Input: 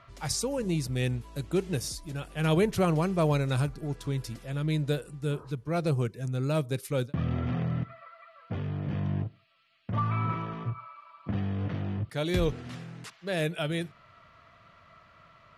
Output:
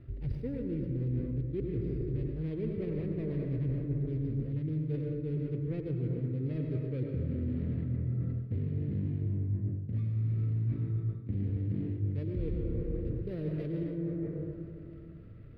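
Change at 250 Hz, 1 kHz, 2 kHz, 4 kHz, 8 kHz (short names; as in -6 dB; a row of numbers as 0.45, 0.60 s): -3.0 dB, under -25 dB, under -15 dB, under -25 dB, under -40 dB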